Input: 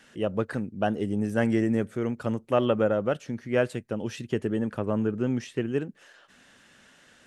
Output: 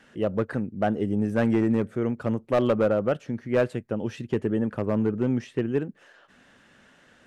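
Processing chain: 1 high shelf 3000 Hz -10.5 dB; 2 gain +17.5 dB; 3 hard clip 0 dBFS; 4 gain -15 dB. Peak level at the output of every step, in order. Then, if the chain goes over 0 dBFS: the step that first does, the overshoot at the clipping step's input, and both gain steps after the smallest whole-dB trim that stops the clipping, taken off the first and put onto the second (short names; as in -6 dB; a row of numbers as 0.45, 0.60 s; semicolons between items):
-11.0, +6.5, 0.0, -15.0 dBFS; step 2, 6.5 dB; step 2 +10.5 dB, step 4 -8 dB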